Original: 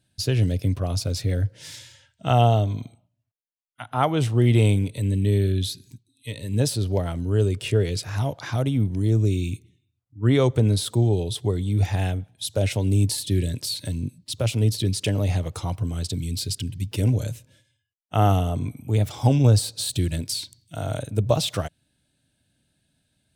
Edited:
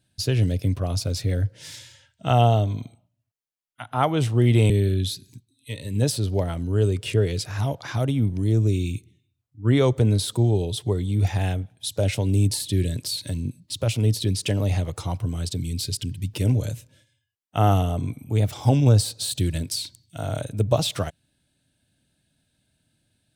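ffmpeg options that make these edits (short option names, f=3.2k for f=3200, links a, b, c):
-filter_complex "[0:a]asplit=2[a][b];[a]atrim=end=4.702[c];[b]atrim=start=5.278[d];[c][d]acrossfade=d=0.004:c1=hsin:c2=hsin"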